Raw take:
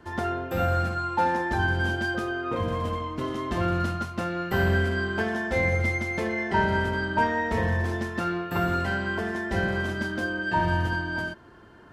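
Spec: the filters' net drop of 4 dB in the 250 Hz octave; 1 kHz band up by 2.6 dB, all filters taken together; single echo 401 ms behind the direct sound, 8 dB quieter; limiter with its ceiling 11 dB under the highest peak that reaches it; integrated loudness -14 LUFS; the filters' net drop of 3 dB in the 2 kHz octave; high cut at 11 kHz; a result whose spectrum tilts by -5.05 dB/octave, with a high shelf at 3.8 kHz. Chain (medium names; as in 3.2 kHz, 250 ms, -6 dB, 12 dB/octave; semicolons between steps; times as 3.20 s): low-pass 11 kHz; peaking EQ 250 Hz -6.5 dB; peaking EQ 1 kHz +5 dB; peaking EQ 2 kHz -5 dB; treble shelf 3.8 kHz -6 dB; peak limiter -21.5 dBFS; delay 401 ms -8 dB; trim +16 dB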